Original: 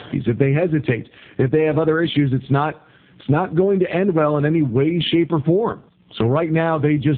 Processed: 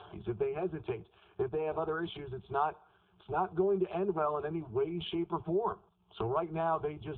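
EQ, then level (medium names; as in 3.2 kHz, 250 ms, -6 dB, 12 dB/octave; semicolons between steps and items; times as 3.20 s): Chebyshev band-stop 170–410 Hz, order 2; low-pass 2.5 kHz 12 dB/octave; static phaser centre 520 Hz, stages 6; -7.0 dB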